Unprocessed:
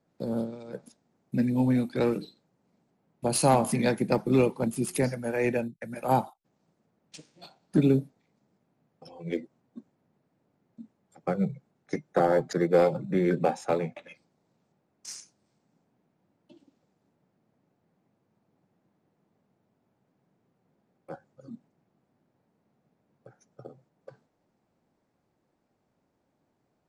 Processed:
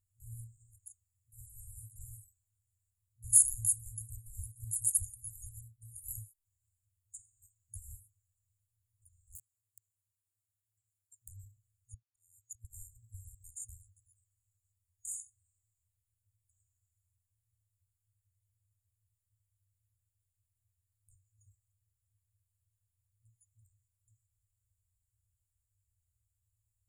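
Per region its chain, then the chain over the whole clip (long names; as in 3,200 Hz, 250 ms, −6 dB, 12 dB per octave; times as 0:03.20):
0:09.35–0:11.28: wrap-around overflow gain 33 dB + downward compressor 3 to 1, threshold −46 dBFS + high-pass filter 210 Hz
0:11.94–0:12.65: high-pass filter 220 Hz + volume swells 614 ms + one half of a high-frequency compander decoder only
whole clip: brick-wall band-stop 110–6,700 Hz; parametric band 10,000 Hz +4 dB 0.28 octaves; level +5.5 dB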